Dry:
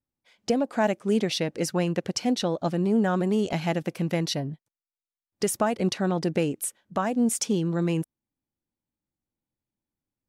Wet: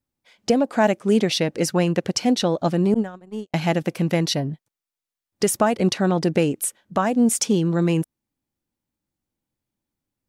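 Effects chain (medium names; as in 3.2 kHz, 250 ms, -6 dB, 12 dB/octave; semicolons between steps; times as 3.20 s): 2.94–3.54 s: gate -20 dBFS, range -58 dB; trim +5.5 dB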